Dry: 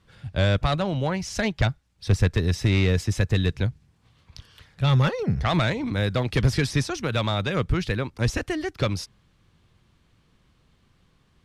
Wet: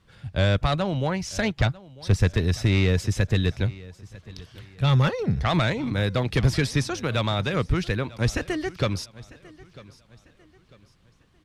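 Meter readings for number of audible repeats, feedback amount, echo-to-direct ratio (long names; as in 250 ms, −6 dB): 2, 36%, −20.0 dB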